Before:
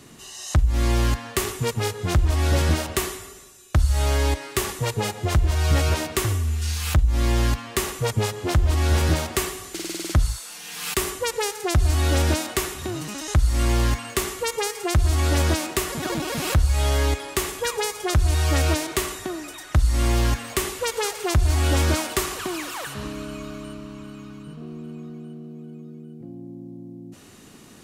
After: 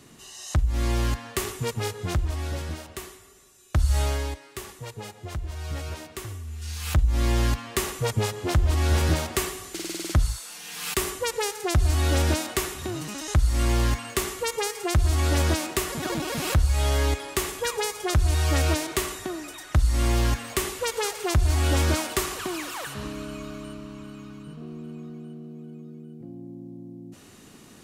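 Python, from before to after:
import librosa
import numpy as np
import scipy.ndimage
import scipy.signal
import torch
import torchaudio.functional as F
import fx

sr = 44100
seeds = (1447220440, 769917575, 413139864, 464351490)

y = fx.gain(x, sr, db=fx.line((2.04, -4.0), (2.68, -13.0), (3.21, -13.0), (3.95, -0.5), (4.41, -13.0), (6.46, -13.0), (7.0, -2.0)))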